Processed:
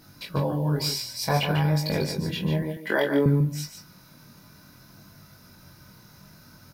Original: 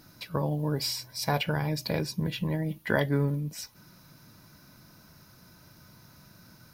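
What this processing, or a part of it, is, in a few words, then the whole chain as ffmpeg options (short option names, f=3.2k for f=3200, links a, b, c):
double-tracked vocal: -filter_complex "[0:a]asplit=2[a][b];[b]adelay=21,volume=-6.5dB[c];[a][c]amix=inputs=2:normalize=0,flanger=delay=19.5:depth=6.5:speed=0.57,asettb=1/sr,asplit=3[d][e][f];[d]atrim=end=2.624[g];[e]atrim=start=2.62:end=3.26,asetpts=PTS-STARTPTS,afade=t=in:d=0.004:c=qsin,afade=t=out:st=0.636:d=0.004:c=qsin,highpass=f=230:w=0.5412,highpass=f=230:w=1.3066[h];[f]atrim=start=3.256[i];[g][h]acrossfade=d=0.004:c1=hsin:c2=qsin[j];[j][i]acrossfade=d=0.004:c1=qsin:c2=hsin,aecho=1:1:146:0.398,volume=5dB"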